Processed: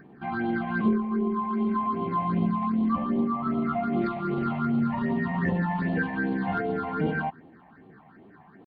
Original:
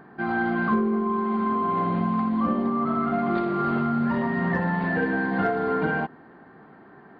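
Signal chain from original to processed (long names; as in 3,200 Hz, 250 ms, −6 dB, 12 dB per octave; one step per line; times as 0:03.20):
all-pass phaser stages 6, 3.1 Hz, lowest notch 370–1,600 Hz
tempo change 0.83×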